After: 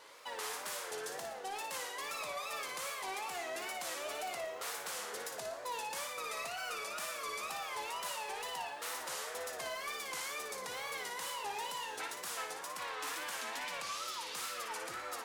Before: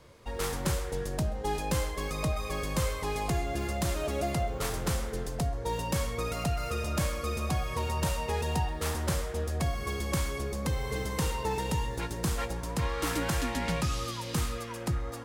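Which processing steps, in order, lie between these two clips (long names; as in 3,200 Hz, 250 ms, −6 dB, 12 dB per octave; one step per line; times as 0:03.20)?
high-pass filter 810 Hz 12 dB per octave
speech leveller 0.5 s
brickwall limiter −27.5 dBFS, peak gain reduction 10 dB
soft clipping −31 dBFS, distortion −20 dB
tape wow and flutter 140 cents
on a send: flutter between parallel walls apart 9.9 metres, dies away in 0.47 s
on the sum: level −1.5 dB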